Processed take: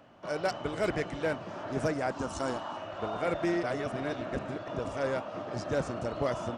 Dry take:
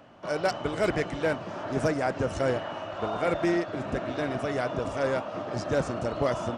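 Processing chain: 2.11–2.77 s: graphic EQ 125/250/500/1000/2000/4000/8000 Hz -8/+4/-8/+9/-8/+3/+7 dB; 3.63–4.68 s: reverse; trim -4 dB

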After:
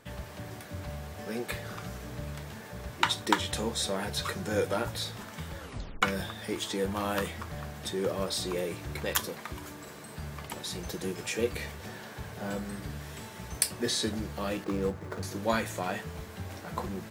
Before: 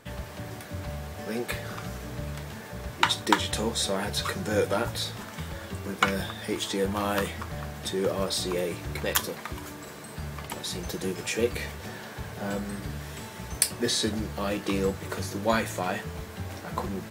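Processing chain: 5.59 s: tape stop 0.43 s; 14.64–15.23 s: median filter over 15 samples; trim -3.5 dB

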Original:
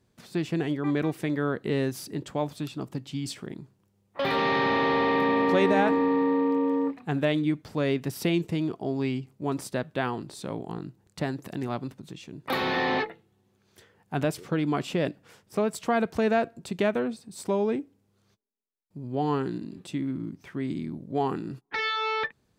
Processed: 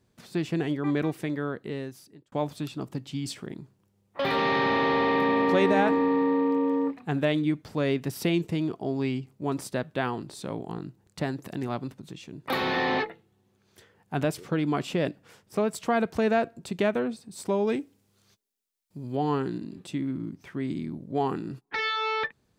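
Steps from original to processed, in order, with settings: 1.00–2.32 s: fade out; 17.67–19.17 s: treble shelf 2 kHz +10 dB

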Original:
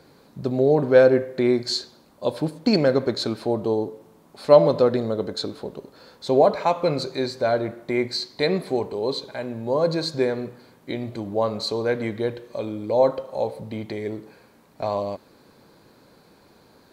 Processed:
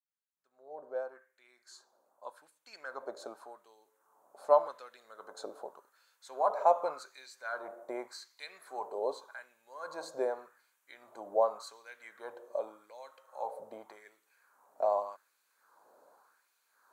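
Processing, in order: fade-in on the opening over 5.60 s; LFO high-pass sine 0.86 Hz 600–2500 Hz; high-order bell 3.1 kHz -13.5 dB; trim -9 dB

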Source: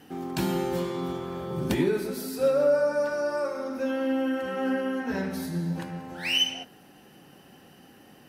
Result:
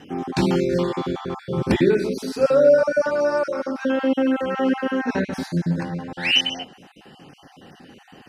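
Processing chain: random holes in the spectrogram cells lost 28%; low-pass 6.3 kHz 12 dB/octave; trim +8 dB

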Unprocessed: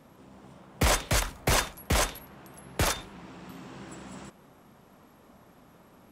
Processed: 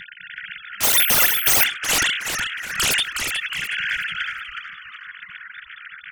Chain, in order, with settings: formants replaced by sine waves; in parallel at +2.5 dB: compression 5:1, threshold -35 dBFS, peak gain reduction 16 dB; on the sum: FFT band-reject 200–1400 Hz; sine folder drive 19 dB, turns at -13 dBFS; on a send: frequency-shifting echo 366 ms, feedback 30%, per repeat -120 Hz, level -6.5 dB; 0.83–1.64 s: on the sum: careless resampling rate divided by 3×, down filtered, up zero stuff; attacks held to a fixed rise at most 330 dB/s; trim -3.5 dB

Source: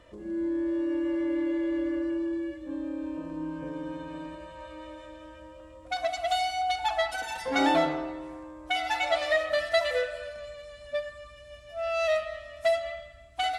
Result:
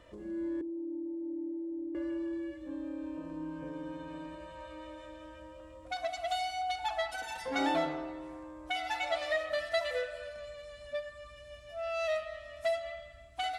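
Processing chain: in parallel at -1 dB: compression, threshold -42 dBFS, peak gain reduction 21 dB; 0.61–1.95 s: on the sum: cascade formant filter u; trim -7.5 dB

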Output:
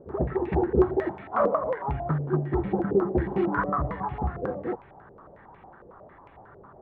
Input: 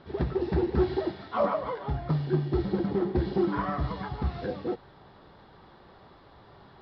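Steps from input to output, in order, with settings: local Wiener filter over 9 samples; step-sequenced low-pass 11 Hz 490–2400 Hz

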